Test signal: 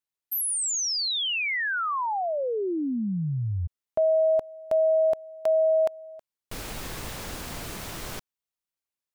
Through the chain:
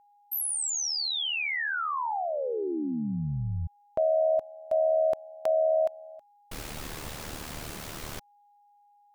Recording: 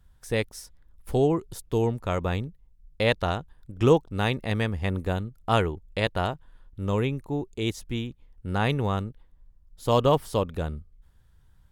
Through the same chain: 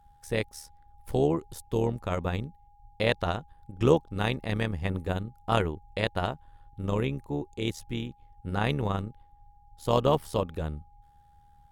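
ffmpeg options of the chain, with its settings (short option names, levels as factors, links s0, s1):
-af "tremolo=f=75:d=0.621,aeval=exprs='val(0)+0.00112*sin(2*PI*820*n/s)':c=same"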